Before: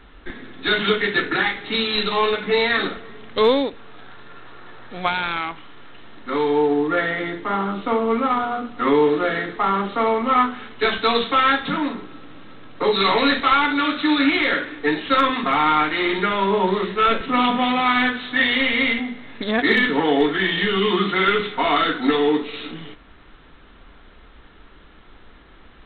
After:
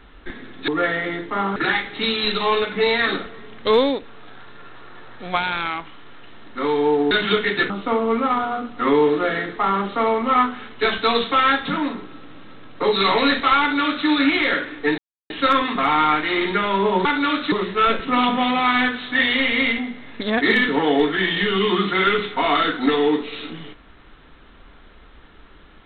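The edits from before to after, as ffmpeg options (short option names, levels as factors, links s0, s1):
-filter_complex "[0:a]asplit=8[s0][s1][s2][s3][s4][s5][s6][s7];[s0]atrim=end=0.682[s8];[s1]atrim=start=6.818:end=7.702[s9];[s2]atrim=start=1.268:end=6.822[s10];[s3]atrim=start=0.678:end=1.272[s11];[s4]atrim=start=7.698:end=14.98,asetpts=PTS-STARTPTS,afade=t=out:st=7.278:d=0.004:c=hsin,apad=pad_dur=0.32[s12];[s5]atrim=start=14.98:end=16.732,asetpts=PTS-STARTPTS,afade=t=in:d=0.004:c=hsin[s13];[s6]atrim=start=13.598:end=14.072[s14];[s7]atrim=start=16.728[s15];[s8][s9]acrossfade=d=0.004:c1=hsin:c2=hsin[s16];[s16][s10]acrossfade=d=0.004:c1=hsin:c2=hsin[s17];[s17][s11]acrossfade=d=0.004:c1=hsin:c2=hsin[s18];[s12][s13]concat=n=2:v=0:a=1[s19];[s18][s19]acrossfade=d=0.004:c1=hsin:c2=hsin[s20];[s20][s14]acrossfade=d=0.004:c1=hsin:c2=hsin[s21];[s21][s15]acrossfade=d=0.004:c1=hsin:c2=hsin"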